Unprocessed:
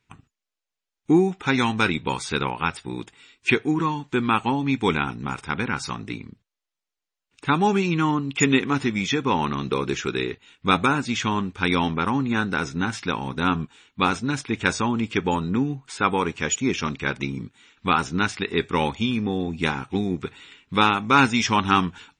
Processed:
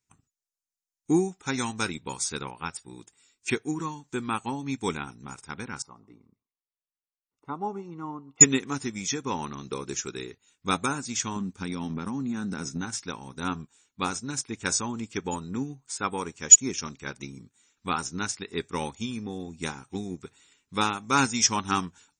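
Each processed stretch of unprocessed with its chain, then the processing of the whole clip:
5.82–8.41 polynomial smoothing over 65 samples + low shelf 290 Hz -9.5 dB + thinning echo 0.129 s, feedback 42%, high-pass 910 Hz, level -22 dB
11.36–12.81 bell 210 Hz +10.5 dB 1.1 oct + compressor 10:1, threshold -18 dBFS
whole clip: resonant high shelf 4500 Hz +12.5 dB, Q 1.5; upward expander 1.5:1, over -34 dBFS; gain -1 dB

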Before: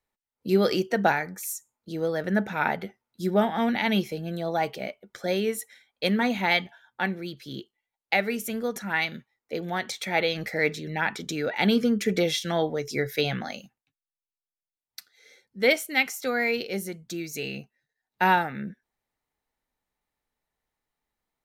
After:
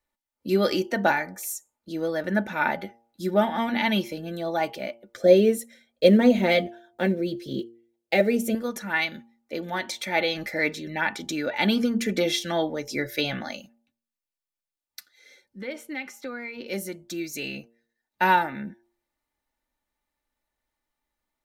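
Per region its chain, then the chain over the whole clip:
5.17–8.55 block floating point 7-bit + resonant low shelf 720 Hz +7.5 dB, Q 3 + notch comb 290 Hz
15.61–16.67 LPF 1800 Hz 6 dB/oct + notch 660 Hz, Q 6.4 + compressor 3:1, threshold -33 dBFS
whole clip: comb 3.4 ms, depth 45%; de-hum 116.1 Hz, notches 8

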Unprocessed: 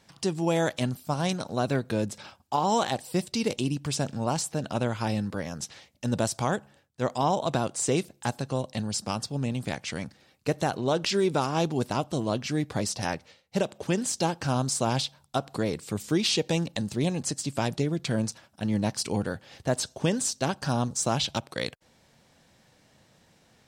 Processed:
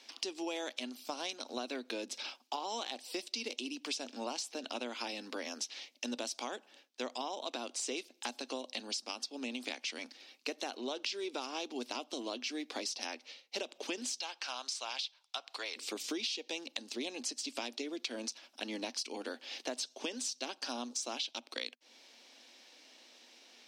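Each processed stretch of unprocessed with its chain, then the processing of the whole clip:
14.2–15.76 HPF 1000 Hz + high shelf 7900 Hz -11.5 dB
whole clip: Chebyshev high-pass 240 Hz, order 6; band shelf 3700 Hz +10.5 dB; compressor 6:1, threshold -35 dBFS; gain -1.5 dB

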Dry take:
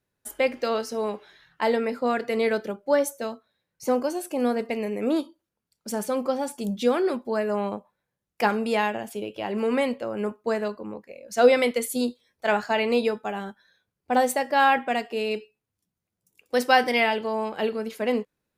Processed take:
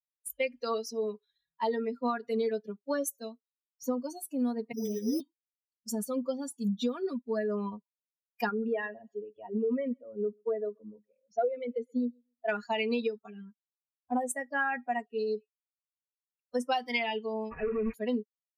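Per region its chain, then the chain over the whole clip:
4.72–5.2 dispersion highs, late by 0.144 s, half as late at 630 Hz + careless resampling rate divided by 8×, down filtered, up hold
8.49–12.49 formant sharpening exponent 1.5 + air absorption 220 m + feedback echo 0.132 s, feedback 38%, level -19 dB
13.26–16.72 envelope phaser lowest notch 210 Hz, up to 4100 Hz, full sweep at -21.5 dBFS + mismatched tape noise reduction decoder only
17.51–17.94 notch comb 180 Hz + companded quantiser 2-bit + careless resampling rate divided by 8×, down none, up filtered
whole clip: per-bin expansion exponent 2; comb 4.2 ms, depth 78%; compressor 16:1, threshold -26 dBFS

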